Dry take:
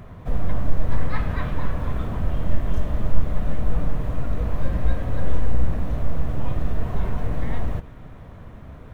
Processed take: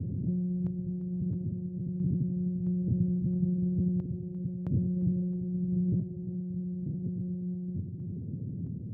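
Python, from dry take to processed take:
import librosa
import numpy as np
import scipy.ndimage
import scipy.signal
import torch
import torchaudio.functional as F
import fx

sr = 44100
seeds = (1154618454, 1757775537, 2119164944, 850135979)

y = fx.lpc_monotone(x, sr, seeds[0], pitch_hz=180.0, order=16)
y = scipy.signal.sosfilt(scipy.signal.cheby2(4, 60, 1200.0, 'lowpass', fs=sr, output='sos'), y)
y = fx.peak_eq(y, sr, hz=130.0, db=12.5, octaves=2.0)
y = y + 10.0 ** (-13.5 / 20.0) * np.pad(y, (int(94 * sr / 1000.0), 0))[:len(y)]
y = fx.tremolo_random(y, sr, seeds[1], hz=1.5, depth_pct=80)
y = scipy.signal.sosfilt(scipy.signal.butter(4, 100.0, 'highpass', fs=sr, output='sos'), y)
y = y + 10.0 ** (-20.5 / 20.0) * np.pad(y, (int(347 * sr / 1000.0), 0))[:len(y)]
y = fx.env_flatten(y, sr, amount_pct=50)
y = y * 10.0 ** (-3.5 / 20.0)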